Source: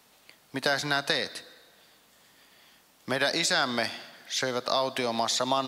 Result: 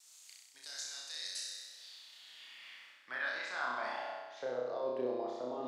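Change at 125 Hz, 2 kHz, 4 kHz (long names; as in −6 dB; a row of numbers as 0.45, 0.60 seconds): below −20 dB, −10.5 dB, −15.0 dB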